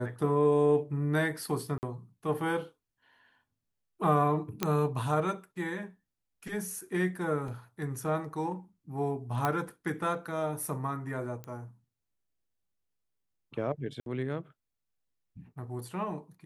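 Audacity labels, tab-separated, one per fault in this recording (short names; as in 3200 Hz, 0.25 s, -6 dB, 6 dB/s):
1.780000	1.830000	gap 49 ms
4.630000	4.630000	pop -12 dBFS
7.480000	7.480000	gap 2.7 ms
9.450000	9.450000	pop -15 dBFS
11.440000	11.440000	pop -27 dBFS
14.000000	14.060000	gap 62 ms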